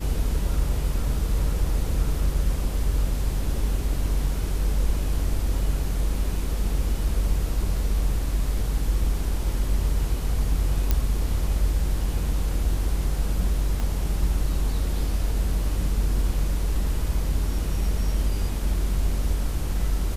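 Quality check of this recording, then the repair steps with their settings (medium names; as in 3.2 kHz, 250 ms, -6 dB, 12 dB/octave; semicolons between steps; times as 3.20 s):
10.91 s: pop -8 dBFS
13.80 s: pop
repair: de-click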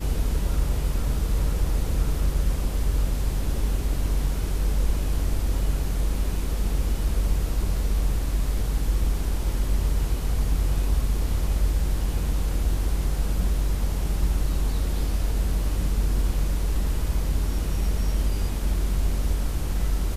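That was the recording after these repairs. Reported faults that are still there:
13.80 s: pop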